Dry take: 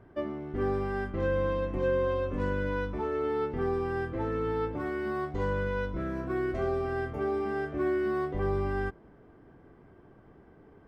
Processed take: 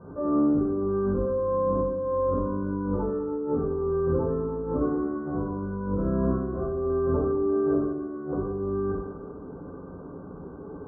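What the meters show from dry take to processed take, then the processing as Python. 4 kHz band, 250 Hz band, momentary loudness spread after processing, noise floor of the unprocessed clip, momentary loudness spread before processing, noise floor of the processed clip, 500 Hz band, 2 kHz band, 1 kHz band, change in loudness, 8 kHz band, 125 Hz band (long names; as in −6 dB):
below −30 dB, +7.5 dB, 16 LU, −56 dBFS, 4 LU, −41 dBFS, +3.5 dB, −11.5 dB, +1.0 dB, +4.0 dB, can't be measured, +3.0 dB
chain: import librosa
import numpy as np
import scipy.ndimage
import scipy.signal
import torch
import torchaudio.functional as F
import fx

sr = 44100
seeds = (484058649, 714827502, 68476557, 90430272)

y = fx.over_compress(x, sr, threshold_db=-37.0, ratio=-1.0)
y = scipy.signal.sosfilt(scipy.signal.cheby1(6, 6, 1500.0, 'lowpass', fs=sr, output='sos'), y)
y = fx.rev_fdn(y, sr, rt60_s=1.1, lf_ratio=0.95, hf_ratio=0.65, size_ms=34.0, drr_db=-9.0)
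y = F.gain(torch.from_numpy(y), 1.5).numpy()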